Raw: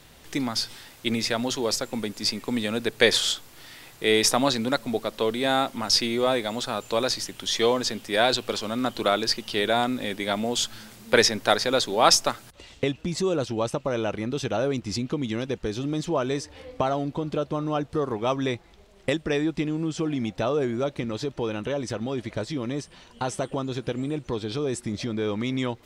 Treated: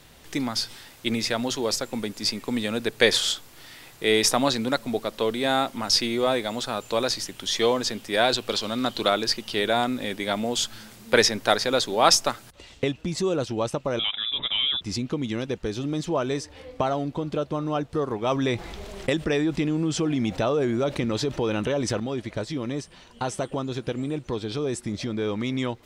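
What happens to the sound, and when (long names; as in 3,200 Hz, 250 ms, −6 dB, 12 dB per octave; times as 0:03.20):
0:08.49–0:09.10: parametric band 4,000 Hz +6.5 dB 0.8 octaves
0:13.99–0:14.81: voice inversion scrambler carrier 3,700 Hz
0:18.31–0:22.00: envelope flattener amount 50%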